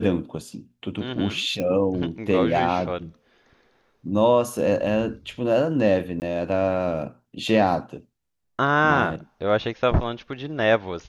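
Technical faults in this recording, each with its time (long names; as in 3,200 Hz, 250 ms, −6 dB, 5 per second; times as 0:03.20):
0:01.60: click −15 dBFS
0:06.20–0:06.22: drop-out 19 ms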